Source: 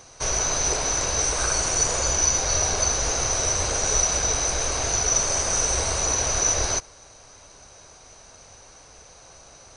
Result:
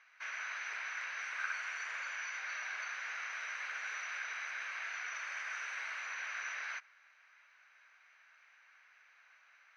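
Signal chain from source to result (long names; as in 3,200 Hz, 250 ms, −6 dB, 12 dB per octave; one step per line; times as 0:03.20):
flat-topped band-pass 1,900 Hz, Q 1.9
level −3 dB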